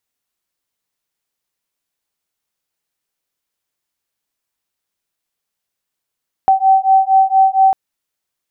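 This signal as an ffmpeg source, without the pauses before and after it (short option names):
-f lavfi -i "aevalsrc='0.266*(sin(2*PI*767*t)+sin(2*PI*771.3*t))':d=1.25:s=44100"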